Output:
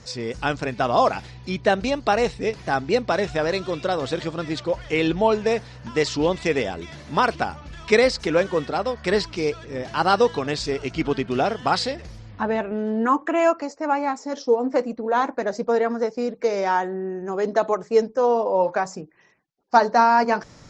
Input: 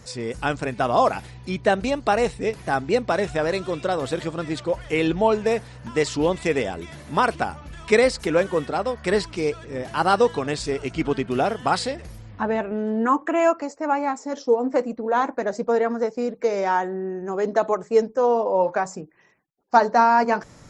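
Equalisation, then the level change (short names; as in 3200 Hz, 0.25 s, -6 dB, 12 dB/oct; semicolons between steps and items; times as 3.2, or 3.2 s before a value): synth low-pass 5400 Hz, resonance Q 1.5; 0.0 dB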